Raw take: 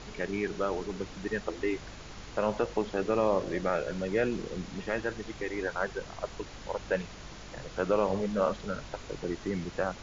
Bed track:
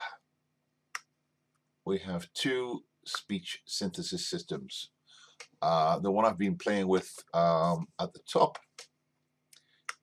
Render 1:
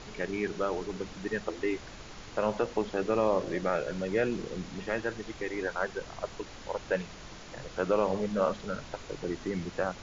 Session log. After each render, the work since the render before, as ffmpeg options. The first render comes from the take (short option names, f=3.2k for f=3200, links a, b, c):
-af "bandreject=f=50:t=h:w=4,bandreject=f=100:t=h:w=4,bandreject=f=150:t=h:w=4,bandreject=f=200:t=h:w=4,bandreject=f=250:t=h:w=4"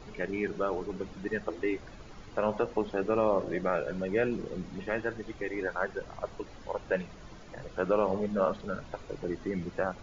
-af "afftdn=nr=10:nf=-47"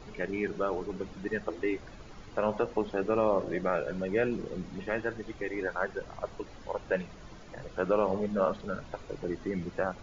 -af anull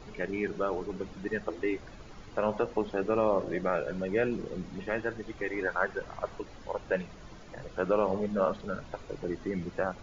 -filter_complex "[0:a]asettb=1/sr,asplit=3[a][b][c];[a]atrim=end=5.374[d];[b]atrim=start=5.37:end=6.39,asetpts=PTS-STARTPTS,afade=t=in:d=0.004:c=qsin,afade=t=out:st=1.016:d=0.004:c=qsin,equalizer=f=1.4k:w=0.79:g=4[e];[c]atrim=start=6.386[f];[d][e]acrossfade=d=0.004:c1=hsin:c2=qsin[g];[g][f]acrossfade=d=0.004:c1=qsin:c2=hsin"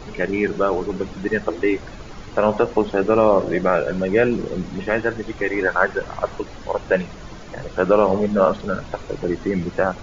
-af "volume=11.5dB"